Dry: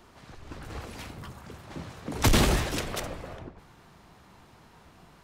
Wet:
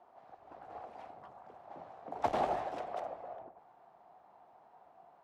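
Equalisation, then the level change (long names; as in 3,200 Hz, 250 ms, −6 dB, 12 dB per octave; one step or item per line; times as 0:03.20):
resonant band-pass 730 Hz, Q 5.1
+4.5 dB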